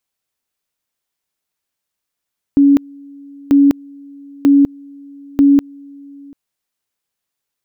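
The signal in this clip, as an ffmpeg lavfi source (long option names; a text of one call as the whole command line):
ffmpeg -f lavfi -i "aevalsrc='pow(10,(-5.5-28*gte(mod(t,0.94),0.2))/20)*sin(2*PI*281*t)':duration=3.76:sample_rate=44100" out.wav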